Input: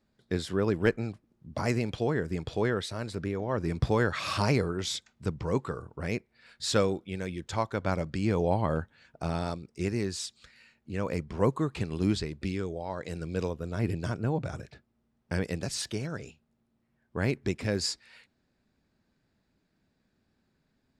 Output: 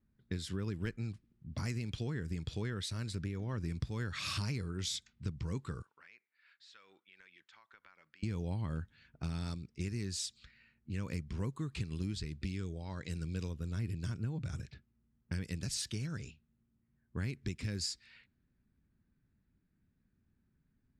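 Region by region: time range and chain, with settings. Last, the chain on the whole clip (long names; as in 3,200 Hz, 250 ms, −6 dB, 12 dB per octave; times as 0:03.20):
0:05.82–0:08.23: high-pass filter 1,200 Hz + downward compressor 8 to 1, threshold −47 dBFS
whole clip: guitar amp tone stack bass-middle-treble 6-0-2; downward compressor 6 to 1, threshold −49 dBFS; low-pass that shuts in the quiet parts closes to 1,500 Hz, open at −50.5 dBFS; level +15 dB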